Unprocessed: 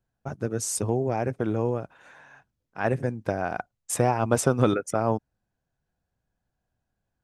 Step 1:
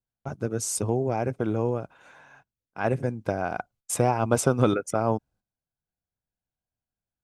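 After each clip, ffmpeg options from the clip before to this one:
ffmpeg -i in.wav -af "agate=range=-13dB:threshold=-55dB:ratio=16:detection=peak,bandreject=frequency=1800:width=8.8" out.wav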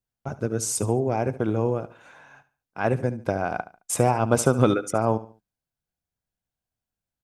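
ffmpeg -i in.wav -af "aecho=1:1:72|144|216:0.158|0.0523|0.0173,volume=2dB" out.wav

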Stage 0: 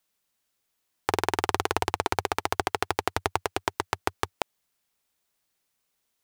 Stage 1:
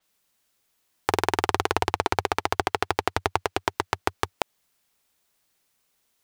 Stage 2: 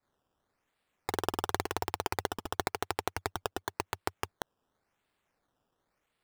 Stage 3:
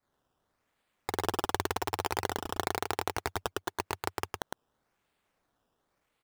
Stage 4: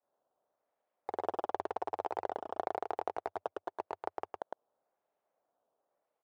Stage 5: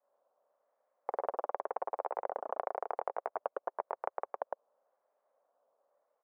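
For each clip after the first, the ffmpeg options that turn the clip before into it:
ffmpeg -i in.wav -filter_complex "[0:a]asplit=2[link_01][link_02];[link_02]alimiter=limit=-12.5dB:level=0:latency=1:release=76,volume=1.5dB[link_03];[link_01][link_03]amix=inputs=2:normalize=0,adynamicequalizer=threshold=0.00447:dfrequency=6500:dqfactor=0.7:tfrequency=6500:tqfactor=0.7:attack=5:release=100:ratio=0.375:range=3:mode=cutabove:tftype=highshelf,volume=-1dB" out.wav
ffmpeg -i in.wav -af "acrusher=samples=14:mix=1:aa=0.000001:lfo=1:lforange=14:lforate=0.93,volume=-9dB" out.wav
ffmpeg -i in.wav -af "aecho=1:1:108:0.708" out.wav
ffmpeg -i in.wav -af "bandpass=frequency=630:width_type=q:width=2.6:csg=0,volume=2.5dB" out.wav
ffmpeg -i in.wav -af "highpass=frequency=220:width=0.5412,highpass=frequency=220:width=1.3066,equalizer=frequency=240:width_type=q:width=4:gain=-5,equalizer=frequency=340:width_type=q:width=4:gain=-9,equalizer=frequency=550:width_type=q:width=4:gain=8,equalizer=frequency=1100:width_type=q:width=4:gain=5,lowpass=frequency=2000:width=0.5412,lowpass=frequency=2000:width=1.3066,acompressor=threshold=-33dB:ratio=6,volume=2.5dB" out.wav

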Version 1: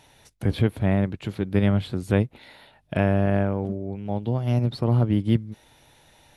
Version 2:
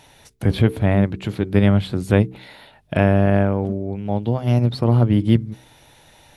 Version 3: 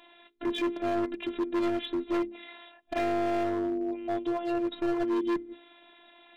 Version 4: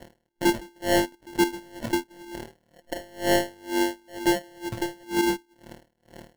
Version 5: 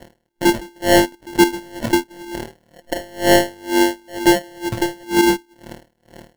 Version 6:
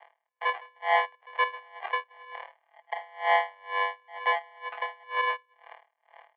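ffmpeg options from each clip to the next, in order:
ffmpeg -i in.wav -af "bandreject=frequency=63.54:width_type=h:width=4,bandreject=frequency=127.08:width_type=h:width=4,bandreject=frequency=190.62:width_type=h:width=4,bandreject=frequency=254.16:width_type=h:width=4,bandreject=frequency=317.7:width_type=h:width=4,bandreject=frequency=381.24:width_type=h:width=4,bandreject=frequency=444.78:width_type=h:width=4,volume=5.5dB" out.wav
ffmpeg -i in.wav -af "afftfilt=real='re*between(b*sr/4096,140,4000)':imag='im*between(b*sr/4096,140,4000)':win_size=4096:overlap=0.75,afftfilt=real='hypot(re,im)*cos(PI*b)':imag='0':win_size=512:overlap=0.75,asoftclip=type=hard:threshold=-25dB" out.wav
ffmpeg -i in.wav -filter_complex "[0:a]asplit=2[link_01][link_02];[link_02]acompressor=threshold=-37dB:ratio=6,volume=-2dB[link_03];[link_01][link_03]amix=inputs=2:normalize=0,acrusher=samples=36:mix=1:aa=0.000001,aeval=exprs='val(0)*pow(10,-32*(0.5-0.5*cos(2*PI*2.1*n/s))/20)':channel_layout=same,volume=7.5dB" out.wav
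ffmpeg -i in.wav -af "dynaudnorm=framelen=110:gausssize=9:maxgain=5dB,volume=4dB" out.wav
ffmpeg -i in.wav -af "highpass=frequency=580:width_type=q:width=0.5412,highpass=frequency=580:width_type=q:width=1.307,lowpass=frequency=2600:width_type=q:width=0.5176,lowpass=frequency=2600:width_type=q:width=0.7071,lowpass=frequency=2600:width_type=q:width=1.932,afreqshift=150,volume=-6dB" out.wav

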